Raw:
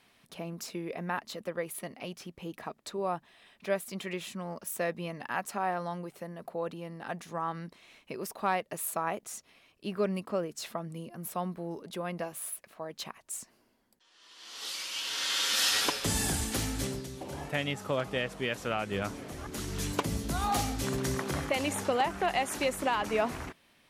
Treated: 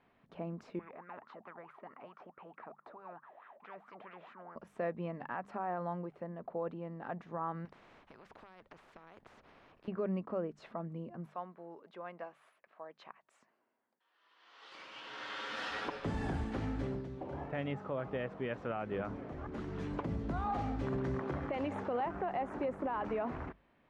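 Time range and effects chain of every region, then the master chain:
0.79–4.56 s: wah-wah 4.6 Hz 580–1400 Hz, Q 14 + spectrum-flattening compressor 4:1
7.65–9.88 s: compression 5:1, threshold -39 dBFS + spectrum-flattening compressor 4:1
11.26–14.72 s: high-pass 1.2 kHz 6 dB/octave + treble shelf 8.2 kHz -8.5 dB
22.14–23.01 s: peaking EQ 3.6 kHz -7.5 dB 2.1 oct + three bands compressed up and down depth 40%
whole clip: low-pass 1.4 kHz 12 dB/octave; hum notches 50/100/150/200 Hz; peak limiter -26 dBFS; trim -1.5 dB

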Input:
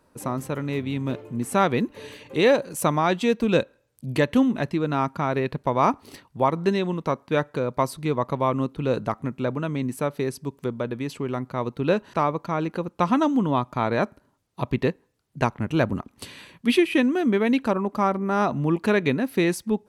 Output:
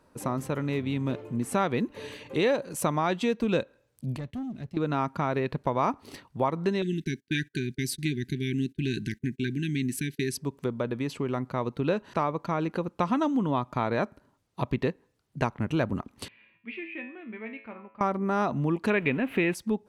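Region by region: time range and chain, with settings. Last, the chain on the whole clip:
4.16–4.77 s: high-pass 65 Hz 24 dB/octave + amplifier tone stack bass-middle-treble 10-0-1 + waveshaping leveller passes 2
6.82–10.37 s: gate -41 dBFS, range -27 dB + brick-wall FIR band-stop 410–1500 Hz + treble shelf 2.2 kHz +9 dB
16.28–18.01 s: four-pole ladder low-pass 2.6 kHz, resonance 65% + feedback comb 110 Hz, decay 0.52 s, mix 80%
18.90–19.55 s: jump at every zero crossing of -36.5 dBFS + resonant high shelf 3.7 kHz -12 dB, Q 3
whole clip: compression 2:1, threshold -26 dBFS; treble shelf 9.6 kHz -6 dB

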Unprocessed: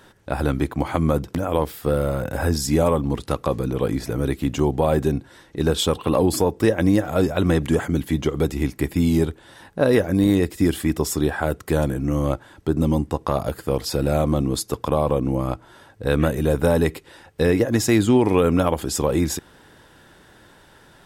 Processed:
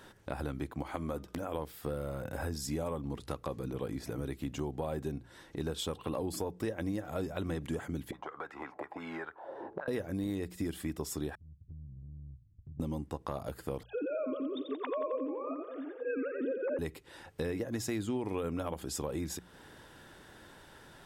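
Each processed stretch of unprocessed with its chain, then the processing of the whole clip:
0.82–1.55 s: peaking EQ 120 Hz -9.5 dB 0.96 oct + de-hum 305.8 Hz, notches 12
8.11–9.88 s: peaking EQ 800 Hz +13 dB 1.9 oct + auto-wah 290–1600 Hz, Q 4.1, up, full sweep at -13 dBFS + three bands compressed up and down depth 100%
11.35–12.80 s: inverse Chebyshev low-pass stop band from 800 Hz, stop band 80 dB + compression, threshold -41 dBFS
13.83–16.79 s: formants replaced by sine waves + two-band feedback delay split 400 Hz, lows 286 ms, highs 88 ms, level -6.5 dB
whole clip: hum notches 60/120/180 Hz; compression 2.5:1, threshold -35 dBFS; trim -4 dB

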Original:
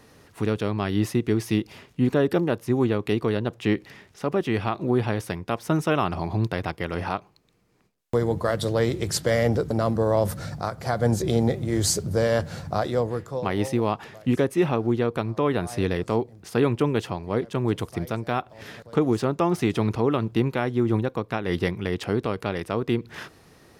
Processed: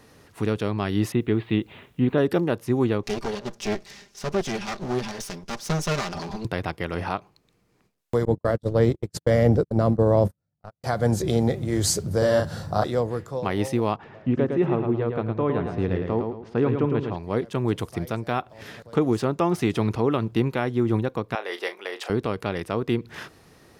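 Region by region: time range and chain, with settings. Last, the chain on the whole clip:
1.12–2.18 s: steep low-pass 3.9 kHz 72 dB/octave + word length cut 12-bit, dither triangular
3.03–6.45 s: comb filter that takes the minimum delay 5 ms + peaking EQ 5.8 kHz +12 dB 1.1 oct
8.25–10.84 s: gate -25 dBFS, range -52 dB + tilt shelf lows +5.5 dB, about 810 Hz
12.18–12.84 s: peaking EQ 2.3 kHz -11.5 dB 0.31 oct + band-stop 6.6 kHz, Q 11 + doubling 38 ms -3 dB
13.96–17.16 s: tape spacing loss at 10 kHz 32 dB + feedback delay 109 ms, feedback 33%, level -5.5 dB
21.35–22.10 s: high-pass 470 Hz 24 dB/octave + doubling 37 ms -11 dB
whole clip: none

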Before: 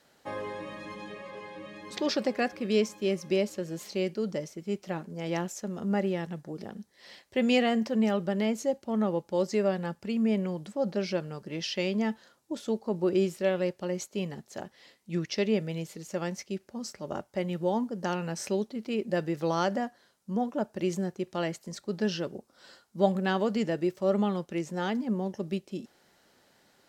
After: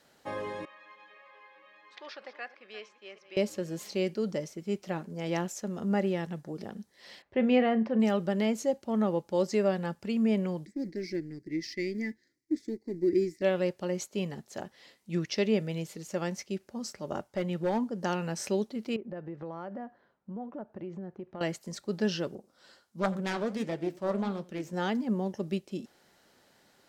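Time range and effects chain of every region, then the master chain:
0.65–3.37 s: chunks repeated in reverse 195 ms, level -14 dB + high-pass 1.3 kHz + tape spacing loss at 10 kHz 35 dB
7.22–8.00 s: low-pass 2 kHz + doubling 36 ms -14 dB
10.65–13.42 s: companding laws mixed up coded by A + FFT filter 130 Hz 0 dB, 210 Hz -7 dB, 310 Hz +9 dB, 570 Hz -19 dB, 1.3 kHz -27 dB, 2 kHz +6 dB, 2.9 kHz -21 dB, 4.7 kHz -2 dB, 11 kHz -11 dB
17.28–18.02 s: treble shelf 9.1 kHz -6.5 dB + hard clipper -23.5 dBFS
18.96–21.41 s: low-pass 1.5 kHz + compression 3:1, threshold -39 dBFS
22.35–24.73 s: self-modulated delay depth 0.43 ms + delay 87 ms -21.5 dB + flange 1.4 Hz, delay 5 ms, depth 9.9 ms, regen -67%
whole clip: none

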